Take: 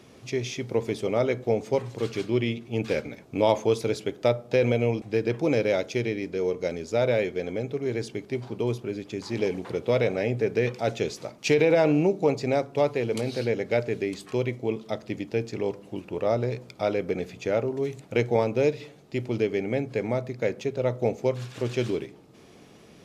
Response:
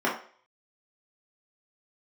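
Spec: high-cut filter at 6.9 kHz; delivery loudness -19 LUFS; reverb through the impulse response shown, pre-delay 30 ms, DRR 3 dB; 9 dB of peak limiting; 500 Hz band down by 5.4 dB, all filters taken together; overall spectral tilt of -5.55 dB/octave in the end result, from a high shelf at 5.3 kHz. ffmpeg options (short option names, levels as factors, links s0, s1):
-filter_complex "[0:a]lowpass=6900,equalizer=f=500:t=o:g=-6.5,highshelf=f=5300:g=5.5,alimiter=limit=0.112:level=0:latency=1,asplit=2[s0][s1];[1:a]atrim=start_sample=2205,adelay=30[s2];[s1][s2]afir=irnorm=-1:irlink=0,volume=0.141[s3];[s0][s3]amix=inputs=2:normalize=0,volume=3.76"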